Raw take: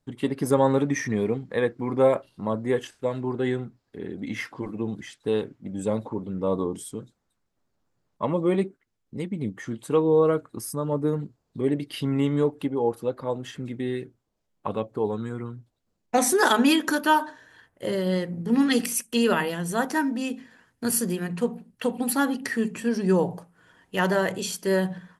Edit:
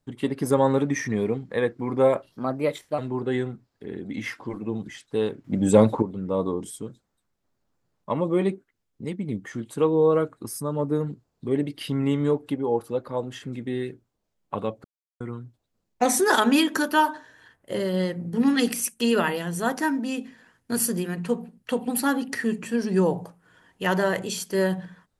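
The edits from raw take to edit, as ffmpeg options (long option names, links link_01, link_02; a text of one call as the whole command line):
ffmpeg -i in.wav -filter_complex "[0:a]asplit=7[link_01][link_02][link_03][link_04][link_05][link_06][link_07];[link_01]atrim=end=2.324[link_08];[link_02]atrim=start=2.32:end=3.11,asetpts=PTS-STARTPTS,asetrate=52479,aresample=44100,atrim=end_sample=29276,asetpts=PTS-STARTPTS[link_09];[link_03]atrim=start=3.106:end=5.572[link_10];[link_04]atrim=start=5.568:end=6.152,asetpts=PTS-STARTPTS,volume=10.5dB[link_11];[link_05]atrim=start=6.148:end=14.97,asetpts=PTS-STARTPTS,afade=type=out:start_time=8.818:duration=0.004:curve=hsin[link_12];[link_06]atrim=start=14.97:end=15.33,asetpts=PTS-STARTPTS,volume=0[link_13];[link_07]atrim=start=15.33,asetpts=PTS-STARTPTS,afade=type=in:duration=0.004:curve=hsin[link_14];[link_08][link_09]acrossfade=duration=0.004:curve1=hsin:curve2=hsin[link_15];[link_15][link_10]acrossfade=duration=0.004:curve1=hsin:curve2=hsin[link_16];[link_16][link_11]acrossfade=duration=0.004:curve1=hsin:curve2=hsin[link_17];[link_12][link_13][link_14]concat=n=3:v=0:a=1[link_18];[link_17][link_18]acrossfade=duration=0.004:curve1=hsin:curve2=hsin" out.wav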